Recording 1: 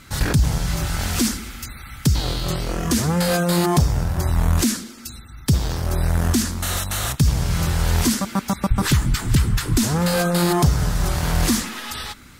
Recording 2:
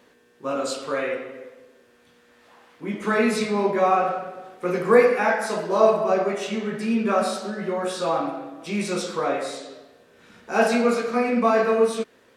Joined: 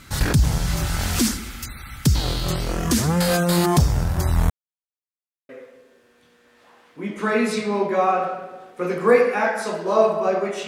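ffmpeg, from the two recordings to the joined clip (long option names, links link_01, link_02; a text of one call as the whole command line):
ffmpeg -i cue0.wav -i cue1.wav -filter_complex "[0:a]apad=whole_dur=10.67,atrim=end=10.67,asplit=2[link_01][link_02];[link_01]atrim=end=4.5,asetpts=PTS-STARTPTS,afade=type=out:start_time=4.496:duration=0.004:curve=hsin[link_03];[link_02]atrim=start=4.5:end=5.49,asetpts=PTS-STARTPTS,volume=0[link_04];[1:a]atrim=start=1.33:end=6.51,asetpts=PTS-STARTPTS,afade=type=in:duration=0.004:curve=hsin[link_05];[link_03][link_04][link_05]concat=n=3:v=0:a=1" out.wav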